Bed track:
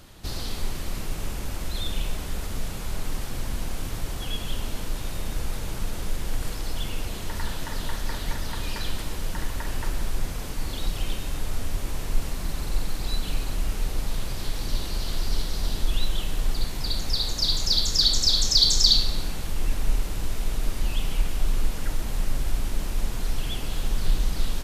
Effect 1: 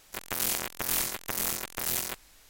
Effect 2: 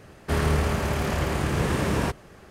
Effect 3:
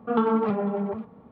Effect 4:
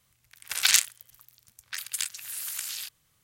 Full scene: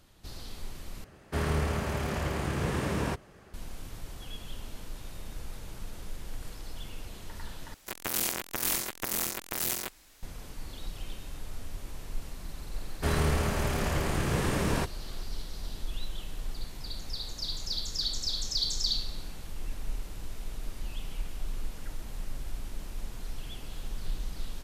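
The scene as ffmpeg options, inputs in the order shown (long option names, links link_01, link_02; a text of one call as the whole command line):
ffmpeg -i bed.wav -i cue0.wav -i cue1.wav -filter_complex "[2:a]asplit=2[link_01][link_02];[0:a]volume=-11.5dB[link_03];[1:a]equalizer=frequency=300:width_type=o:width=0.77:gain=3.5[link_04];[link_02]equalizer=frequency=12000:width=0.3:gain=4.5[link_05];[link_03]asplit=3[link_06][link_07][link_08];[link_06]atrim=end=1.044[link_09];[link_01]atrim=end=2.5,asetpts=PTS-STARTPTS,volume=-6dB[link_10];[link_07]atrim=start=3.536:end=7.744[link_11];[link_04]atrim=end=2.49,asetpts=PTS-STARTPTS,volume=-1dB[link_12];[link_08]atrim=start=10.226[link_13];[link_05]atrim=end=2.5,asetpts=PTS-STARTPTS,volume=-4.5dB,afade=type=in:duration=0.004:curve=hsin,afade=type=out:start_time=2.496:duration=0.004:curve=hsin,adelay=12740[link_14];[link_09][link_10]acrossfade=duration=0.004:curve1=hsin:curve2=hsin[link_15];[link_15][link_11]acrossfade=duration=0.004:curve1=hsin:curve2=hsin[link_16];[link_16][link_12]acrossfade=duration=0.004:curve1=hsin:curve2=hsin[link_17];[link_17][link_13]acrossfade=duration=0.004:curve1=hsin:curve2=hsin[link_18];[link_18][link_14]amix=inputs=2:normalize=0" out.wav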